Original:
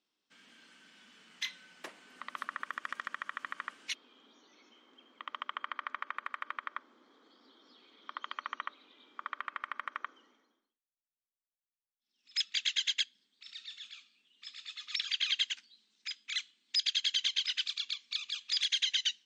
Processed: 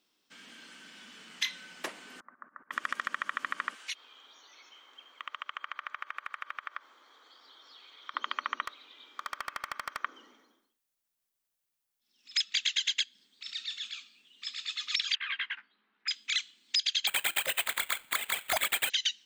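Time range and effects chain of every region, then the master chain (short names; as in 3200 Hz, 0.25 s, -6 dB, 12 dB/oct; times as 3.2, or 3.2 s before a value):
2.2–2.71 switching spikes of -36 dBFS + steep low-pass 1700 Hz 48 dB/oct + auto swell 0.42 s
3.75–8.14 HPF 800 Hz + notch 5100 Hz, Q 18 + compressor 2.5:1, threshold -45 dBFS
8.65–10.04 HPF 1000 Hz 6 dB/oct + overloaded stage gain 35 dB
15.15–16.08 LPF 1600 Hz 24 dB/oct + tilt shelf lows -8.5 dB, about 650 Hz + doubler 15 ms -5 dB
17.07–18.9 sample-rate reducer 5600 Hz + low shelf 360 Hz -9 dB
whole clip: high shelf 8900 Hz +6 dB; compressor 4:1, threshold -35 dBFS; gain +8 dB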